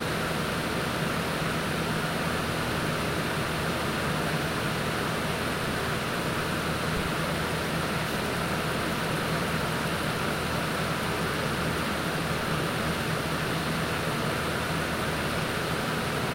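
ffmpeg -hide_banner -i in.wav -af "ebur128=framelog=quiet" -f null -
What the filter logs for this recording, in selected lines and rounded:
Integrated loudness:
  I:         -28.3 LUFS
  Threshold: -38.3 LUFS
Loudness range:
  LRA:         0.2 LU
  Threshold: -48.2 LUFS
  LRA low:   -28.4 LUFS
  LRA high:  -28.1 LUFS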